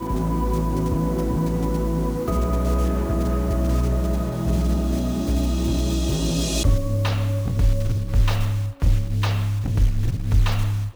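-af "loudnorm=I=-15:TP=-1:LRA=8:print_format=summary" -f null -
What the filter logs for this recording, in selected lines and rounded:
Input Integrated:    -22.9 LUFS
Input True Peak:      -9.3 dBTP
Input LRA:             0.5 LU
Input Threshold:     -32.9 LUFS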